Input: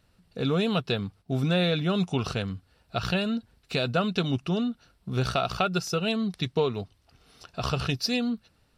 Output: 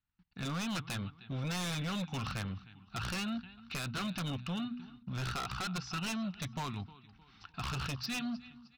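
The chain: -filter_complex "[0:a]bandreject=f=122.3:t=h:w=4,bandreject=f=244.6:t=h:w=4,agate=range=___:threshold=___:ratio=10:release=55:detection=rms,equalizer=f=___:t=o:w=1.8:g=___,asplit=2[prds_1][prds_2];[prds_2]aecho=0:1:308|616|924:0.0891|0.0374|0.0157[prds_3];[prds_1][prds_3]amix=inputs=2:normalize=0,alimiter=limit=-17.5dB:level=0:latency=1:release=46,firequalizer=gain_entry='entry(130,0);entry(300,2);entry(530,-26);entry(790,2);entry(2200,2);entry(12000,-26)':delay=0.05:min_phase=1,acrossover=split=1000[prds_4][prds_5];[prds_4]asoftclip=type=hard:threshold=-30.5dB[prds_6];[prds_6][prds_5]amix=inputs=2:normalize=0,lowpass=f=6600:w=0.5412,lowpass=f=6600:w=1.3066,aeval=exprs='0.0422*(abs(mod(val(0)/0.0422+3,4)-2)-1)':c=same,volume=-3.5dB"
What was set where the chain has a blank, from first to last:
-21dB, -59dB, 350, -6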